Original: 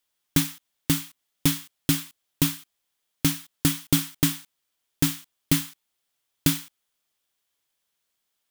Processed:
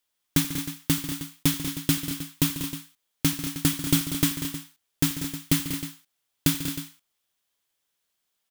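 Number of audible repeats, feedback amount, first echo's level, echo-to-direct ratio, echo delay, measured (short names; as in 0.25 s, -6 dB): 4, no steady repeat, -19.5 dB, -6.0 dB, 85 ms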